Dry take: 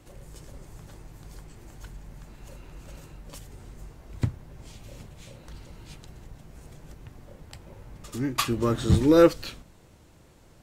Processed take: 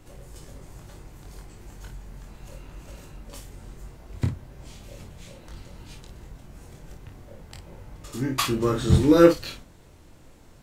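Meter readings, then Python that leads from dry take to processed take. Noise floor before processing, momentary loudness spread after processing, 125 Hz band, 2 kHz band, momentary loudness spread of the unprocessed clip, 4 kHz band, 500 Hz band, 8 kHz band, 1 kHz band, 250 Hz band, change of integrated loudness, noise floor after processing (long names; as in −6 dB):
−55 dBFS, 21 LU, +2.5 dB, +2.5 dB, 20 LU, +2.0 dB, +1.5 dB, +2.0 dB, +1.5 dB, +2.5 dB, +2.0 dB, −51 dBFS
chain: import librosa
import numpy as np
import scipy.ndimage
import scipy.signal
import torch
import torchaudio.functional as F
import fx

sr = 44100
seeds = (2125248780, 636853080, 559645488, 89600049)

y = fx.room_early_taps(x, sr, ms=(23, 53), db=(-4.0, -7.5))
y = fx.dmg_noise_colour(y, sr, seeds[0], colour='brown', level_db=-55.0)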